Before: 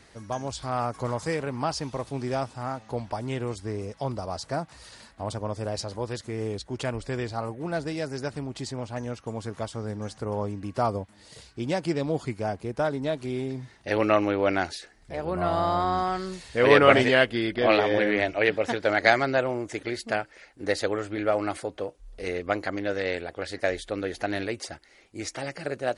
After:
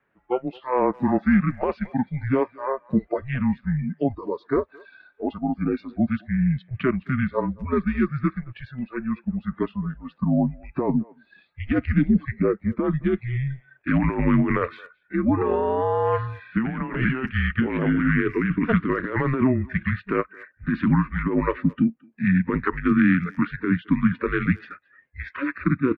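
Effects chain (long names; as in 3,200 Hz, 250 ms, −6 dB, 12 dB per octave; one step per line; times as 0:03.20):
noise reduction from a noise print of the clip's start 22 dB
single-sideband voice off tune −260 Hz 390–2,700 Hz
compressor whose output falls as the input rises −29 dBFS, ratio −1
far-end echo of a speakerphone 220 ms, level −23 dB
dynamic equaliser 200 Hz, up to +7 dB, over −44 dBFS, Q 1.2
level +5.5 dB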